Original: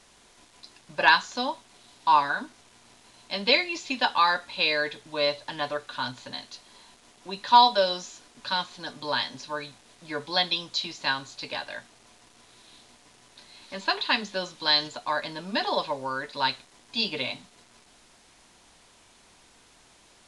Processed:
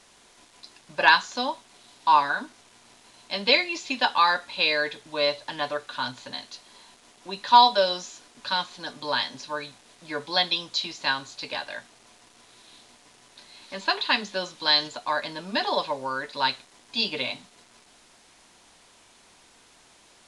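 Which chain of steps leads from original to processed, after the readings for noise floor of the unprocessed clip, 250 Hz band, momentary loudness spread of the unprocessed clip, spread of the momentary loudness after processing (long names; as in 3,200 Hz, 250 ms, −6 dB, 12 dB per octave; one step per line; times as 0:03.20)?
−58 dBFS, 0.0 dB, 17 LU, 17 LU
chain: low-shelf EQ 150 Hz −6 dB
level +1.5 dB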